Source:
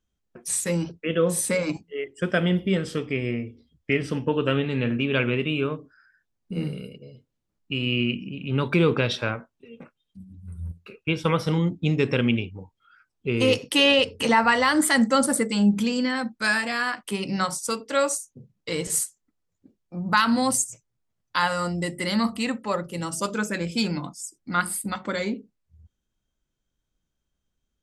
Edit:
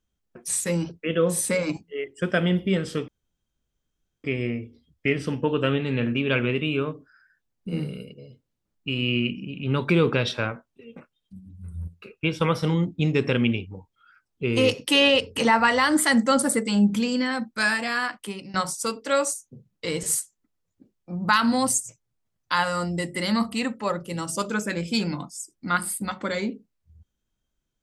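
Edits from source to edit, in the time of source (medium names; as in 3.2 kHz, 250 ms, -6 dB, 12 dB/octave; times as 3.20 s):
3.08 s: insert room tone 1.16 s
16.90–17.38 s: fade out, to -18.5 dB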